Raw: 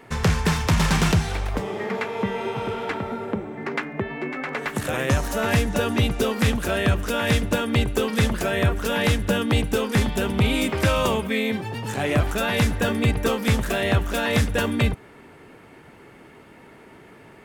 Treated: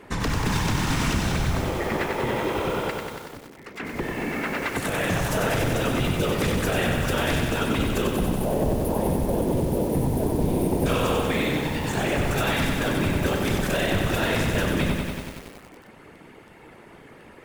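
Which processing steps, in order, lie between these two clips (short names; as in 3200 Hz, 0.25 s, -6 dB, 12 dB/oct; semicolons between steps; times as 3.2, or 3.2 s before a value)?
8.07–10.86 spectral gain 1000–8800 Hz -22 dB; whisperiser; limiter -16.5 dBFS, peak gain reduction 11 dB; 2.9–3.8 pre-emphasis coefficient 0.8; lo-fi delay 94 ms, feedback 80%, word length 7-bit, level -4 dB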